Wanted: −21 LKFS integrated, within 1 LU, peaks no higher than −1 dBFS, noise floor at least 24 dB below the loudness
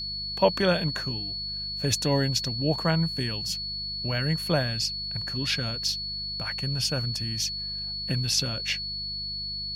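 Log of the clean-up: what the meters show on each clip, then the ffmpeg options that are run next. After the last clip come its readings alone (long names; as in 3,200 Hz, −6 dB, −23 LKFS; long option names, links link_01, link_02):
mains hum 50 Hz; hum harmonics up to 200 Hz; level of the hum −42 dBFS; interfering tone 4,400 Hz; level of the tone −31 dBFS; integrated loudness −27.0 LKFS; sample peak −9.0 dBFS; target loudness −21.0 LKFS
→ -af "bandreject=frequency=50:width_type=h:width=4,bandreject=frequency=100:width_type=h:width=4,bandreject=frequency=150:width_type=h:width=4,bandreject=frequency=200:width_type=h:width=4"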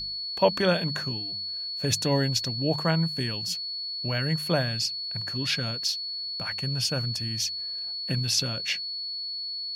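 mains hum none found; interfering tone 4,400 Hz; level of the tone −31 dBFS
→ -af "bandreject=frequency=4400:width=30"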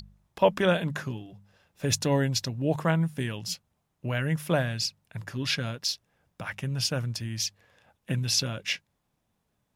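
interfering tone none found; integrated loudness −28.5 LKFS; sample peak −9.0 dBFS; target loudness −21.0 LKFS
→ -af "volume=7.5dB"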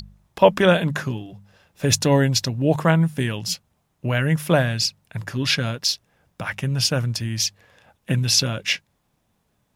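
integrated loudness −21.0 LKFS; sample peak −1.5 dBFS; background noise floor −70 dBFS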